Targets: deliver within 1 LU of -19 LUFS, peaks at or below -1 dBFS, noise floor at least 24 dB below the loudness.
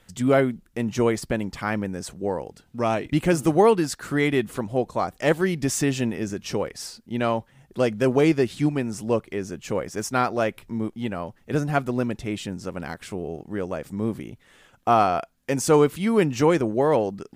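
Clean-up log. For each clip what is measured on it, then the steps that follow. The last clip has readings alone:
loudness -24.5 LUFS; peak level -5.5 dBFS; loudness target -19.0 LUFS
-> trim +5.5 dB; peak limiter -1 dBFS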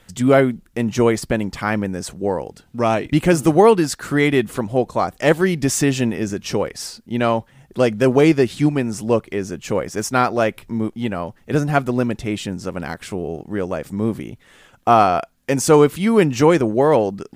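loudness -19.0 LUFS; peak level -1.0 dBFS; noise floor -55 dBFS

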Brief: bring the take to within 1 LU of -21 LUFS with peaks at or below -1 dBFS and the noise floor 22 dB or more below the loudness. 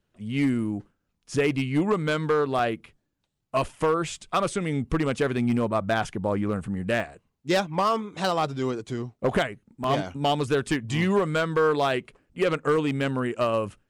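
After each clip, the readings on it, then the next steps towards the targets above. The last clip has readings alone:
clipped samples 0.9%; clipping level -16.0 dBFS; dropouts 3; longest dropout 1.9 ms; loudness -26.0 LUFS; peak level -16.0 dBFS; loudness target -21.0 LUFS
-> clip repair -16 dBFS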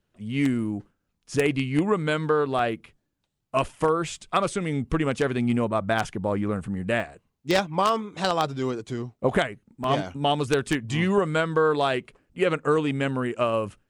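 clipped samples 0.0%; dropouts 3; longest dropout 1.9 ms
-> interpolate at 2.59/7.00/9.84 s, 1.9 ms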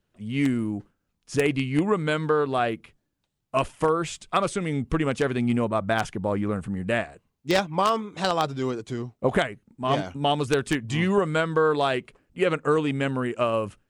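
dropouts 0; loudness -25.5 LUFS; peak level -7.0 dBFS; loudness target -21.0 LUFS
-> trim +4.5 dB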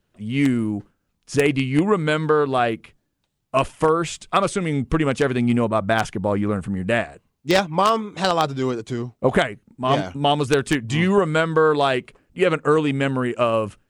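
loudness -21.0 LUFS; peak level -2.5 dBFS; noise floor -73 dBFS

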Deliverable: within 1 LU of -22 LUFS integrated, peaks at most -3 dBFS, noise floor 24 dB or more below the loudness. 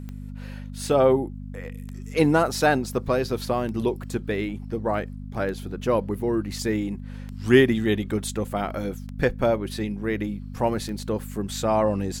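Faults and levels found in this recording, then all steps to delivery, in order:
clicks found 7; hum 50 Hz; highest harmonic 250 Hz; hum level -33 dBFS; loudness -25.0 LUFS; peak level -4.0 dBFS; loudness target -22.0 LUFS
-> de-click; de-hum 50 Hz, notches 5; trim +3 dB; peak limiter -3 dBFS

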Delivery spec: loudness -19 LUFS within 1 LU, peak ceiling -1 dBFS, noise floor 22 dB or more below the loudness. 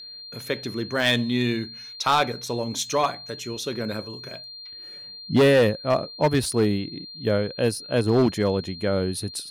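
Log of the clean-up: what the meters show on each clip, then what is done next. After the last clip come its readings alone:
clipped samples 1.1%; clipping level -13.0 dBFS; steady tone 4.2 kHz; tone level -38 dBFS; loudness -24.0 LUFS; peak level -13.0 dBFS; loudness target -19.0 LUFS
-> clip repair -13 dBFS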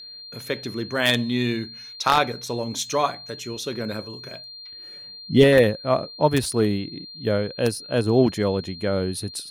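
clipped samples 0.0%; steady tone 4.2 kHz; tone level -38 dBFS
-> band-stop 4.2 kHz, Q 30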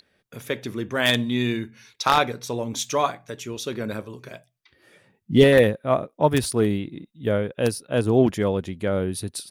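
steady tone not found; loudness -23.0 LUFS; peak level -4.0 dBFS; loudness target -19.0 LUFS
-> trim +4 dB; peak limiter -1 dBFS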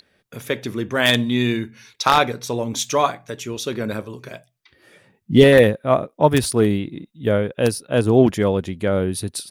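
loudness -19.0 LUFS; peak level -1.0 dBFS; noise floor -68 dBFS

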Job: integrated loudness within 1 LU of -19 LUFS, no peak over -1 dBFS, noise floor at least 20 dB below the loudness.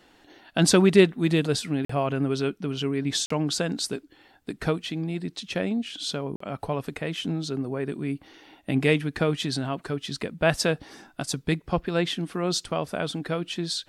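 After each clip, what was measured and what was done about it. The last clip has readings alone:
dropouts 3; longest dropout 44 ms; loudness -26.5 LUFS; peak level -6.5 dBFS; loudness target -19.0 LUFS
-> interpolate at 1.85/3.26/6.36 s, 44 ms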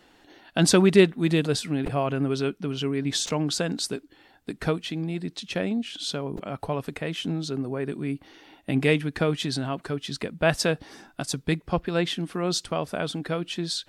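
dropouts 0; loudness -26.5 LUFS; peak level -6.5 dBFS; loudness target -19.0 LUFS
-> trim +7.5 dB; peak limiter -1 dBFS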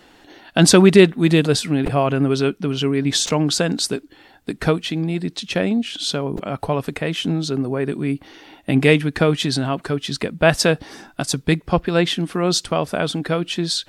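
loudness -19.0 LUFS; peak level -1.0 dBFS; noise floor -51 dBFS

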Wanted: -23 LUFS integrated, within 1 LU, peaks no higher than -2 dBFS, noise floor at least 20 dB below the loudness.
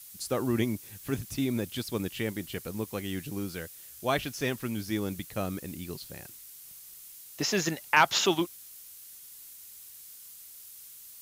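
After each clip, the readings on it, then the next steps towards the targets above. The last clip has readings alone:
noise floor -49 dBFS; noise floor target -51 dBFS; loudness -31.0 LUFS; peak level -8.5 dBFS; loudness target -23.0 LUFS
-> noise print and reduce 6 dB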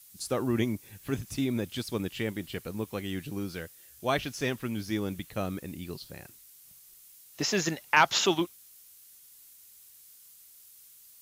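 noise floor -55 dBFS; loudness -31.0 LUFS; peak level -8.5 dBFS; loudness target -23.0 LUFS
-> trim +8 dB; peak limiter -2 dBFS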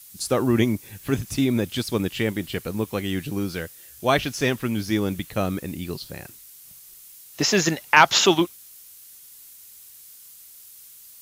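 loudness -23.0 LUFS; peak level -2.0 dBFS; noise floor -47 dBFS

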